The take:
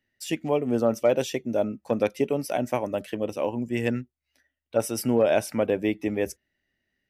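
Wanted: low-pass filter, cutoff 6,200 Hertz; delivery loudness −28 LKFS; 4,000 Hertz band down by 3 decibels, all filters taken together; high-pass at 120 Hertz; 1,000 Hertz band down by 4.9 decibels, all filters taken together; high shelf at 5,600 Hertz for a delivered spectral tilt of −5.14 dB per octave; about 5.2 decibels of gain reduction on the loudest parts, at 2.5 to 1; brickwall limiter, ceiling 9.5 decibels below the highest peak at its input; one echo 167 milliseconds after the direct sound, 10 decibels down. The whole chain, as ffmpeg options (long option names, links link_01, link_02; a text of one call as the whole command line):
ffmpeg -i in.wav -af "highpass=120,lowpass=6200,equalizer=frequency=1000:width_type=o:gain=-7.5,equalizer=frequency=4000:width_type=o:gain=-5.5,highshelf=frequency=5600:gain=6,acompressor=threshold=-26dB:ratio=2.5,alimiter=level_in=1.5dB:limit=-24dB:level=0:latency=1,volume=-1.5dB,aecho=1:1:167:0.316,volume=7.5dB" out.wav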